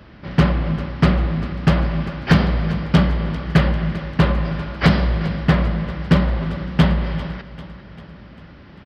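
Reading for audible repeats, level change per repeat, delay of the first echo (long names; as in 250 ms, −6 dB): 4, −5.0 dB, 395 ms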